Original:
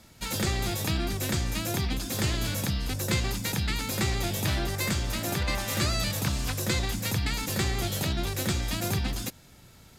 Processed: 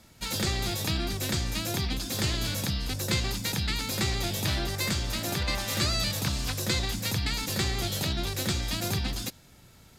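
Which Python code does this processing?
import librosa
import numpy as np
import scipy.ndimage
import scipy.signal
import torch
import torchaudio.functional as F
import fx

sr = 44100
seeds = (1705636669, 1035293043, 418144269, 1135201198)

y = fx.dynamic_eq(x, sr, hz=4300.0, q=1.4, threshold_db=-45.0, ratio=4.0, max_db=5)
y = F.gain(torch.from_numpy(y), -1.5).numpy()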